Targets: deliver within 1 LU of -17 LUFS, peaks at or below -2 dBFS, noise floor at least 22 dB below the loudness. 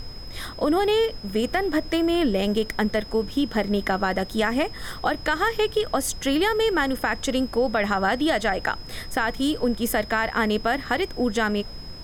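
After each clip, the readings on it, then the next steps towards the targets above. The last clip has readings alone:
steady tone 5100 Hz; tone level -41 dBFS; noise floor -38 dBFS; noise floor target -46 dBFS; loudness -24.0 LUFS; peak -9.5 dBFS; loudness target -17.0 LUFS
-> notch 5100 Hz, Q 30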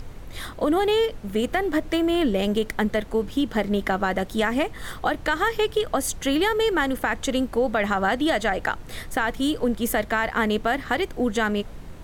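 steady tone none; noise floor -39 dBFS; noise floor target -46 dBFS
-> noise print and reduce 7 dB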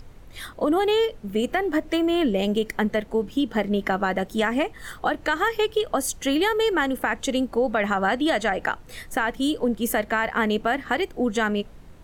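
noise floor -45 dBFS; noise floor target -46 dBFS
-> noise print and reduce 6 dB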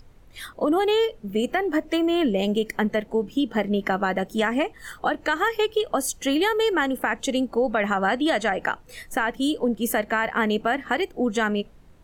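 noise floor -50 dBFS; loudness -24.0 LUFS; peak -10.5 dBFS; loudness target -17.0 LUFS
-> gain +7 dB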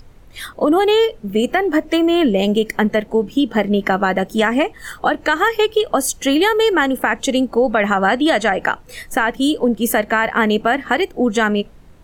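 loudness -17.0 LUFS; peak -3.5 dBFS; noise floor -43 dBFS

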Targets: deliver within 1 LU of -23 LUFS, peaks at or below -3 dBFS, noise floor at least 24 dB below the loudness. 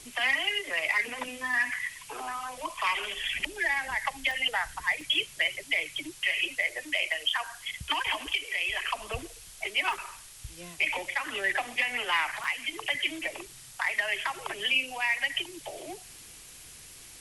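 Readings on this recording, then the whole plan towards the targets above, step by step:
dropouts 6; longest dropout 2.2 ms; noise floor -49 dBFS; noise floor target -53 dBFS; loudness -29.0 LUFS; peak -15.0 dBFS; loudness target -23.0 LUFS
-> interpolate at 2.81/4.31/5.01/9.93/12.44/14.25, 2.2 ms; denoiser 6 dB, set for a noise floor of -49 dBFS; gain +6 dB

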